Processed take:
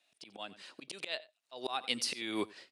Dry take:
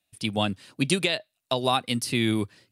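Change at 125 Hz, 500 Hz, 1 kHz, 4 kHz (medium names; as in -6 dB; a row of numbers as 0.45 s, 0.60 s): -29.0 dB, -13.5 dB, -13.0 dB, -9.5 dB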